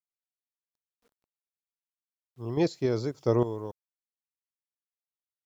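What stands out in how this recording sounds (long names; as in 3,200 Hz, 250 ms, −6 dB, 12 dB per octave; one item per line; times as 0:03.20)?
sample-and-hold tremolo, depth 75%
a quantiser's noise floor 12 bits, dither none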